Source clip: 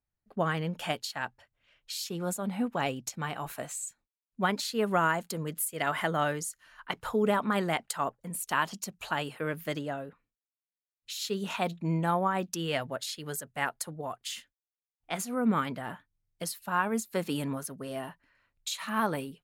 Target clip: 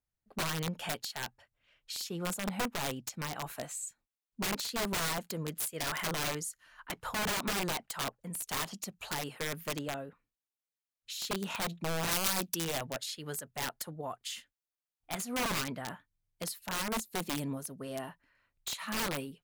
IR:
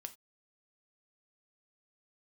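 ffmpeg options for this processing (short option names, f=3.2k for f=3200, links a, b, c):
-filter_complex "[0:a]asettb=1/sr,asplit=3[a][b][c];[a]atrim=end=16.894[d];[b]atrim=start=16.89:end=17.77,asetpts=PTS-STARTPTS,afade=t=in:d=0.004:c=qsin,afade=t=out:st=0.876:d=0.004:c=qsin,equalizer=f=1.5k:t=o:w=1.7:g=-8[e];[c]atrim=start=17.766[f];[d][e]acrossfade=d=0.004:c1=hsin:c2=qsin[g];[g][f]acrossfade=d=0.004:c1=qsin:c2=hsin,aeval=exprs='(mod(17.8*val(0)+1,2)-1)/17.8':c=same,asettb=1/sr,asplit=3[h][i][j];[h]atrim=end=12.114[k];[i]atrim=start=12.11:end=12.64,asetpts=PTS-STARTPTS,afade=t=in:d=0.004:c=qsin,afade=t=out:st=0.526:d=0.004:c=qsin,aemphasis=mode=production:type=cd[l];[j]atrim=start=12.636[m];[k][l]acrossfade=d=0.004:c1=hsin:c2=qsin[n];[n][m]acrossfade=d=0.004:c1=qsin:c2=hsin,volume=-2.5dB"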